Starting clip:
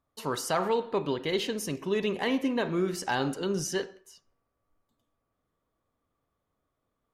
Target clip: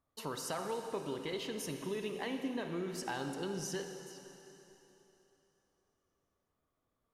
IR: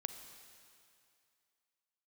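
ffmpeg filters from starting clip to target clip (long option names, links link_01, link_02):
-filter_complex "[0:a]acompressor=threshold=-34dB:ratio=3[link_01];[1:a]atrim=start_sample=2205,asetrate=31311,aresample=44100[link_02];[link_01][link_02]afir=irnorm=-1:irlink=0,volume=-3.5dB"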